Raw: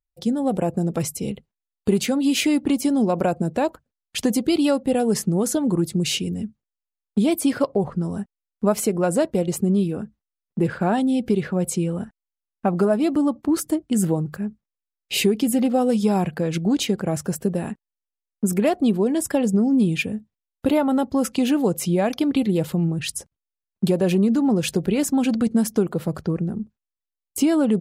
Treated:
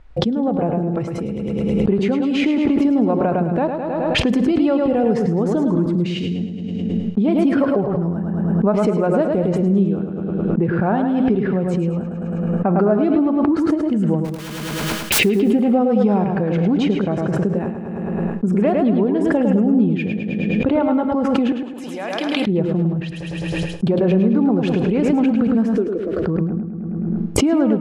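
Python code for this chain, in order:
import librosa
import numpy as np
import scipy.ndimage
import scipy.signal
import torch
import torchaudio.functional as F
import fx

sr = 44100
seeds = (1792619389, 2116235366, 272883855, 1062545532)

y = scipy.signal.sosfilt(scipy.signal.butter(2, 1800.0, 'lowpass', fs=sr, output='sos'), x)
y = fx.overflow_wrap(y, sr, gain_db=34.0, at=(14.24, 15.18), fade=0.02)
y = fx.differentiator(y, sr, at=(21.52, 22.47))
y = fx.fixed_phaser(y, sr, hz=370.0, stages=4, at=(25.75, 26.2))
y = fx.echo_feedback(y, sr, ms=106, feedback_pct=48, wet_db=-6)
y = fx.rev_schroeder(y, sr, rt60_s=0.97, comb_ms=28, drr_db=15.5)
y = fx.pre_swell(y, sr, db_per_s=21.0)
y = y * 10.0 ** (1.0 / 20.0)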